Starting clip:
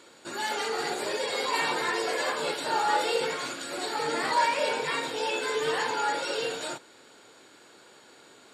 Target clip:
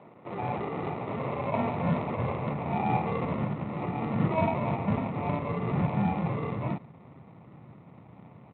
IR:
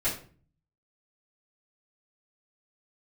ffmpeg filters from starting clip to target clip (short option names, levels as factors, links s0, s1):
-filter_complex "[0:a]aphaser=in_gain=1:out_gain=1:delay=1.2:decay=0.21:speed=0.3:type=sinusoidal,asplit=2[s0][s1];[s1]volume=39.8,asoftclip=hard,volume=0.0251,volume=0.562[s2];[s0][s2]amix=inputs=2:normalize=0,equalizer=f=370:w=0.66:g=-8.5,aresample=16000,acrusher=samples=10:mix=1:aa=0.000001,aresample=44100,highpass=f=120:w=0.5412,highpass=f=120:w=1.3066,asubboost=boost=6:cutoff=170,lowpass=f=2000:w=0.5412,lowpass=f=2000:w=1.3066" -ar 8000 -c:a adpcm_g726 -b:a 32k